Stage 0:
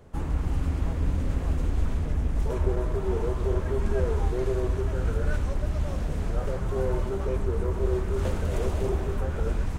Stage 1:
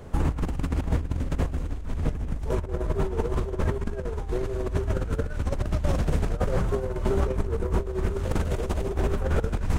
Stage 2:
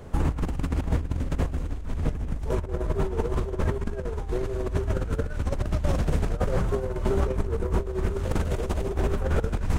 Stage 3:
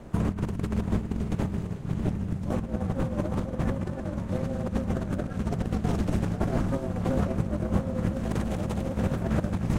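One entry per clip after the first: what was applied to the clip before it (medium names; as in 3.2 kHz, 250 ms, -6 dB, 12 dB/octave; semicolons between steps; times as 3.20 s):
compressor with a negative ratio -29 dBFS, ratio -0.5; trim +4.5 dB
no audible change
echo that smears into a reverb 676 ms, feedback 49%, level -10.5 dB; ring modulator 140 Hz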